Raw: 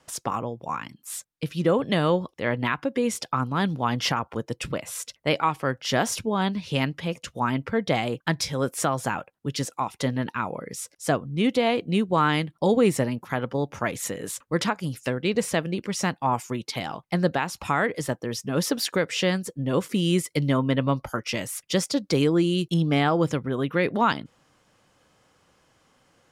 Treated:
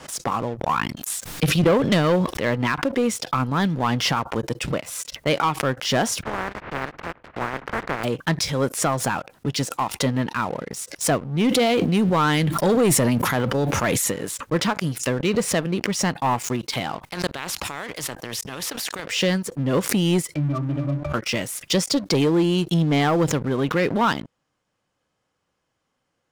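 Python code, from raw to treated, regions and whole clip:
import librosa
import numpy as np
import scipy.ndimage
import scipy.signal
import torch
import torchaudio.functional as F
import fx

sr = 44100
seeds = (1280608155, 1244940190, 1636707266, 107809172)

y = fx.chain(x, sr, fx.transient(attack_db=8, sustain_db=-10),
    fx.sustainer(db_per_s=73.0), at=(0.63, 2.39))
y = fx.spec_flatten(y, sr, power=0.11, at=(6.21, 8.03), fade=0.02)
y = fx.lowpass(y, sr, hz=1800.0, slope=24, at=(6.21, 8.03), fade=0.02)
y = fx.transient(y, sr, attack_db=1, sustain_db=-6, at=(6.21, 8.03), fade=0.02)
y = fx.chain(y, sr, fx.high_shelf(hz=8100.0, db=9.0),
    fx.sustainer(db_per_s=20.0), at=(11.48, 14.12))
y = fx.chain(y, sr, fx.level_steps(step_db=20),
    fx.spectral_comp(ratio=2.0), at=(16.99, 19.05))
y = fx.chain(y, sr, fx.octave_resonator(note='D', decay_s=0.19),
    fx.env_flatten(amount_pct=70), at=(20.34, 21.14))
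y = fx.high_shelf(y, sr, hz=11000.0, db=-3.5)
y = fx.leveller(y, sr, passes=3)
y = fx.pre_swell(y, sr, db_per_s=110.0)
y = F.gain(torch.from_numpy(y), -7.0).numpy()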